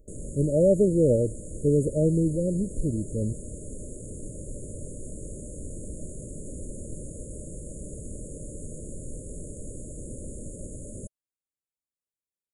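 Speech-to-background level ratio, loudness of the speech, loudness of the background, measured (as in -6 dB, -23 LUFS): 15.0 dB, -25.0 LUFS, -40.0 LUFS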